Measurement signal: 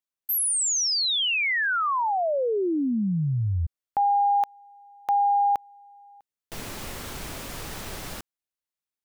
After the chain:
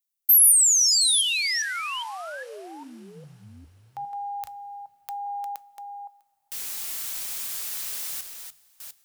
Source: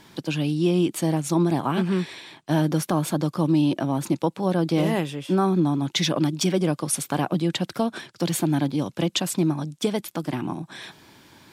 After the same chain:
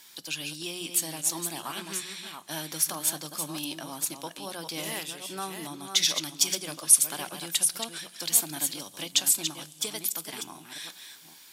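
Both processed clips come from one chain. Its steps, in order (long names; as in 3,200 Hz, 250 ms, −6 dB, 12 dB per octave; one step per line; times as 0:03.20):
delay that plays each chunk backwards 405 ms, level −7 dB
first-order pre-emphasis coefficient 0.97
mains-hum notches 60/120/180 Hz
coupled-rooms reverb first 0.22 s, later 4.7 s, from −20 dB, DRR 15.5 dB
level +6.5 dB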